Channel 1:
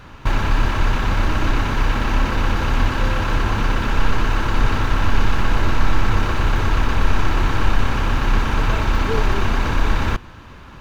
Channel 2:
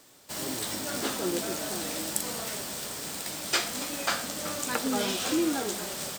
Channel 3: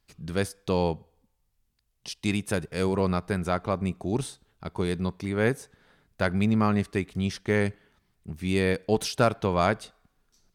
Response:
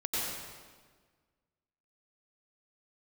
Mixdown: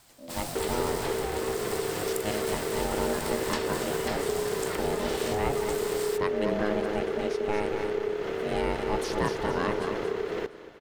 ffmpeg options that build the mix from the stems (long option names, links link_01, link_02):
-filter_complex "[0:a]acompressor=threshold=-17dB:ratio=6,adelay=300,volume=-8dB,asplit=2[link_01][link_02];[link_02]volume=-17dB[link_03];[1:a]bandreject=frequency=6300:width=8.1,acompressor=threshold=-31dB:ratio=6,volume=1dB[link_04];[2:a]volume=-4.5dB,asplit=2[link_05][link_06];[link_06]volume=-6dB[link_07];[link_03][link_07]amix=inputs=2:normalize=0,aecho=0:1:232|464|696|928|1160|1392:1|0.4|0.16|0.064|0.0256|0.0102[link_08];[link_01][link_04][link_05][link_08]amix=inputs=4:normalize=0,aeval=exprs='val(0)*sin(2*PI*420*n/s)':channel_layout=same"